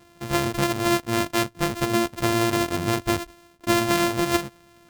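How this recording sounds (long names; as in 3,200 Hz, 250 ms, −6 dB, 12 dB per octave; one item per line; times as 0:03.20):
a buzz of ramps at a fixed pitch in blocks of 128 samples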